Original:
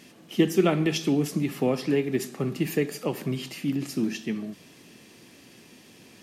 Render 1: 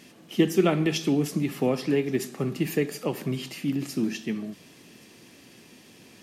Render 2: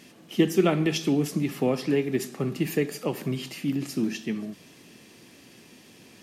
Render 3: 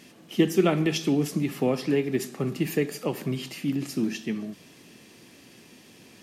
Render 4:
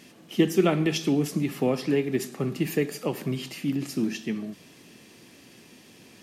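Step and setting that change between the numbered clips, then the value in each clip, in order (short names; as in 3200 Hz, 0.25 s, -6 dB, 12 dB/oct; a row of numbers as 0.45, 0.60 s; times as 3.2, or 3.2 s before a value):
thin delay, time: 1.124, 0.529, 0.265, 0.107 s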